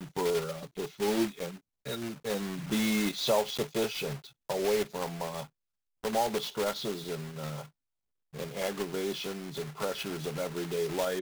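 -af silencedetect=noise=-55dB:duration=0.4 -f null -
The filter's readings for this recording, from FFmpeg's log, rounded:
silence_start: 5.47
silence_end: 6.04 | silence_duration: 0.56
silence_start: 7.69
silence_end: 8.33 | silence_duration: 0.64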